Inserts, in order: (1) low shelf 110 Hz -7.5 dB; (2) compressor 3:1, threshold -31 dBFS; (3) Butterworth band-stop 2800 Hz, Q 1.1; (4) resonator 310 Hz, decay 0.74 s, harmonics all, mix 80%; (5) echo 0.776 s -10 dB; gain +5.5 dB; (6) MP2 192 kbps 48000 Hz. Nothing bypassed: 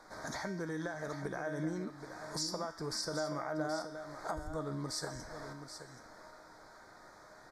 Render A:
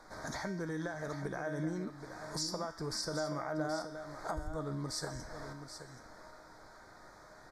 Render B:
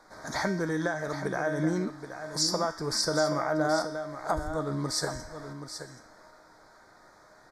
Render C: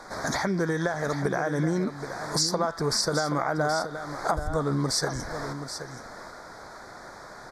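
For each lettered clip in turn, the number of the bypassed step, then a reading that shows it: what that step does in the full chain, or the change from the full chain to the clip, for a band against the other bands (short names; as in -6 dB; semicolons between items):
1, 125 Hz band +2.0 dB; 2, mean gain reduction 5.0 dB; 4, loudness change +12.0 LU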